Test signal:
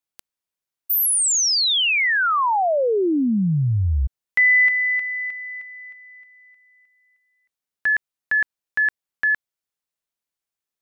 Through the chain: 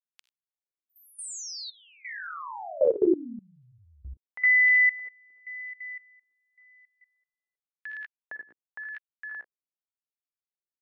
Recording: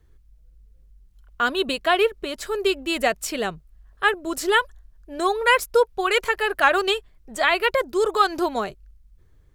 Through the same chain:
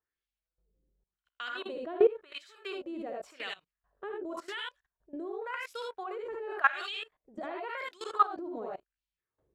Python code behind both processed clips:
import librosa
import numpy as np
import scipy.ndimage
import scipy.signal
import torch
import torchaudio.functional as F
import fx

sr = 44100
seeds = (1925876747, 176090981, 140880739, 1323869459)

y = fx.peak_eq(x, sr, hz=1900.0, db=-2.5, octaves=2.5)
y = fx.echo_multitap(y, sr, ms=(48, 62, 79, 95), db=(-12.5, -6.0, -4.0, -10.5))
y = fx.filter_lfo_bandpass(y, sr, shape='sine', hz=0.91, low_hz=320.0, high_hz=3100.0, q=1.8)
y = fx.level_steps(y, sr, step_db=19)